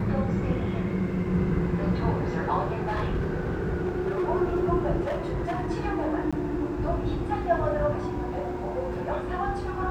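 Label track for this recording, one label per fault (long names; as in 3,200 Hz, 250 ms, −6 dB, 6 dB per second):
2.850000	4.290000	clipping −23 dBFS
5.010000	5.680000	clipping −25 dBFS
6.310000	6.330000	drop-out 16 ms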